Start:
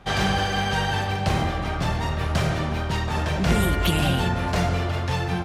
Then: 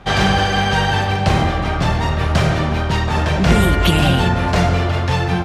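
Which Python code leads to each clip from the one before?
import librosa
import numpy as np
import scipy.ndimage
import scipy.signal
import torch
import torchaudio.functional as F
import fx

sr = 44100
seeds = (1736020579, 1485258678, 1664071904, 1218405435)

y = fx.high_shelf(x, sr, hz=11000.0, db=-11.0)
y = y * 10.0 ** (7.5 / 20.0)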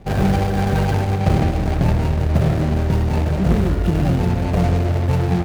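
y = scipy.ndimage.median_filter(x, 41, mode='constant')
y = fx.rider(y, sr, range_db=10, speed_s=0.5)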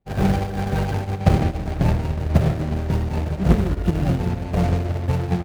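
y = fx.upward_expand(x, sr, threshold_db=-35.0, expansion=2.5)
y = y * 10.0 ** (3.0 / 20.0)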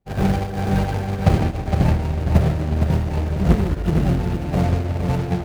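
y = x + 10.0 ** (-5.5 / 20.0) * np.pad(x, (int(462 * sr / 1000.0), 0))[:len(x)]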